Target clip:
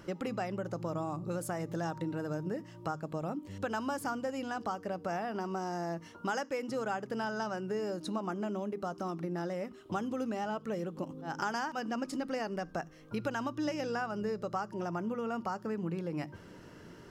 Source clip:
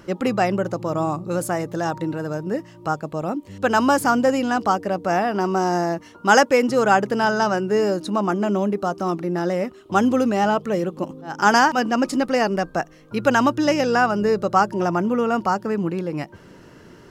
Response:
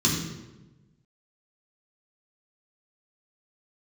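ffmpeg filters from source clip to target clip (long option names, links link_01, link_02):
-filter_complex "[0:a]acompressor=threshold=-27dB:ratio=5,asplit=2[link_01][link_02];[1:a]atrim=start_sample=2205,atrim=end_sample=4410[link_03];[link_02][link_03]afir=irnorm=-1:irlink=0,volume=-32dB[link_04];[link_01][link_04]amix=inputs=2:normalize=0,volume=-6dB"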